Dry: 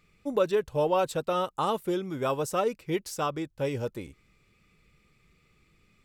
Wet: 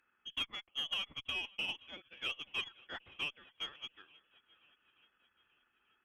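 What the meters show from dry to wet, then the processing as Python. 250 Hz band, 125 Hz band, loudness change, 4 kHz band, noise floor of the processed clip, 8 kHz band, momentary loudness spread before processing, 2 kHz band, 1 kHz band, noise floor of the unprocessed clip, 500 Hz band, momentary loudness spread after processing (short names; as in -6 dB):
-26.0 dB, -26.0 dB, -10.5 dB, +5.0 dB, -78 dBFS, -18.0 dB, 7 LU, 0.0 dB, -21.5 dB, -67 dBFS, -31.0 dB, 11 LU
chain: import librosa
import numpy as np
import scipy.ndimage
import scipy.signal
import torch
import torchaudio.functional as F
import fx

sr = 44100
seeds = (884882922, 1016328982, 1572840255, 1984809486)

y = scipy.signal.sosfilt(scipy.signal.bessel(8, 900.0, 'highpass', norm='mag', fs=sr, output='sos'), x)
y = fx.transient(y, sr, attack_db=6, sustain_db=-8)
y = 10.0 ** (-24.5 / 20.0) * np.tanh(y / 10.0 ** (-24.5 / 20.0))
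y = fx.freq_invert(y, sr, carrier_hz=3800)
y = fx.echo_swing(y, sr, ms=883, ratio=1.5, feedback_pct=43, wet_db=-23.5)
y = fx.cheby_harmonics(y, sr, harmonics=(3, 4, 6, 8), levels_db=(-23, -33, -44, -38), full_scale_db=-19.5)
y = y * librosa.db_to_amplitude(-5.0)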